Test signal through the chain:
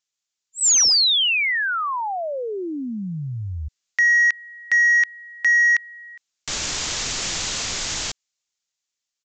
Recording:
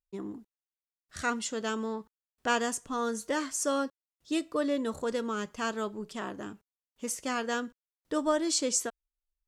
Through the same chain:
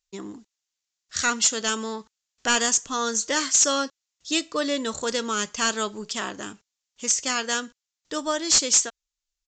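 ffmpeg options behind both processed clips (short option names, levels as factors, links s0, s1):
-af "crystalizer=i=8.5:c=0,dynaudnorm=f=580:g=5:m=1.58,aresample=16000,asoftclip=type=hard:threshold=0.188,aresample=44100,volume=1.12"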